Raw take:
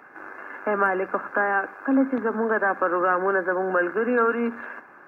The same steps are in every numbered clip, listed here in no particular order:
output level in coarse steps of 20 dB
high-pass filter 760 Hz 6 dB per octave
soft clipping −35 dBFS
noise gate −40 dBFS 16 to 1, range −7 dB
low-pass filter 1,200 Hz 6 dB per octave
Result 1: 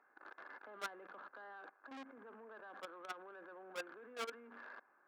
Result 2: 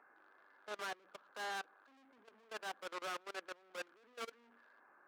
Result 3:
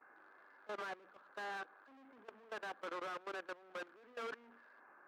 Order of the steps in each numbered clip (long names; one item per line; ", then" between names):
output level in coarse steps, then low-pass filter, then soft clipping, then high-pass filter, then noise gate
low-pass filter, then soft clipping, then high-pass filter, then output level in coarse steps, then noise gate
soft clipping, then high-pass filter, then noise gate, then output level in coarse steps, then low-pass filter